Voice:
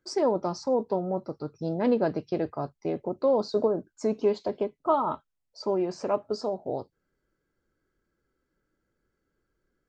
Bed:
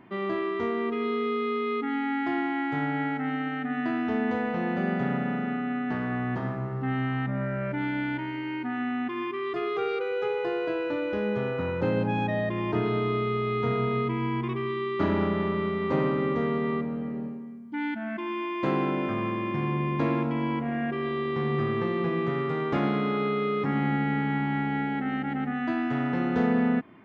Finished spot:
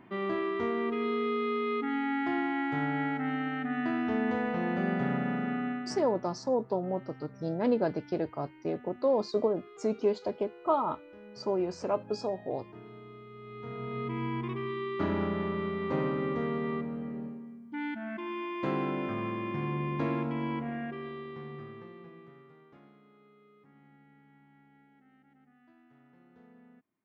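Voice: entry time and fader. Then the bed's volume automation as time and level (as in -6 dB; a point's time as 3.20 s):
5.80 s, -3.0 dB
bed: 5.67 s -2.5 dB
6.27 s -22 dB
13.29 s -22 dB
14.18 s -5 dB
20.60 s -5 dB
23.01 s -34 dB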